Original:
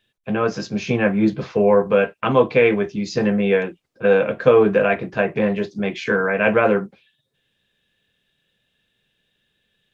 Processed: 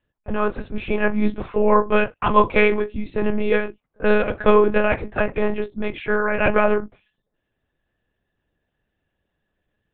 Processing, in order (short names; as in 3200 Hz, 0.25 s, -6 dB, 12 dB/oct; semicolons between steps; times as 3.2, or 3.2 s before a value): bell 1000 Hz +8 dB 0.23 oct; monotone LPC vocoder at 8 kHz 210 Hz; low-pass opened by the level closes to 1300 Hz, open at -11.5 dBFS; gain -1 dB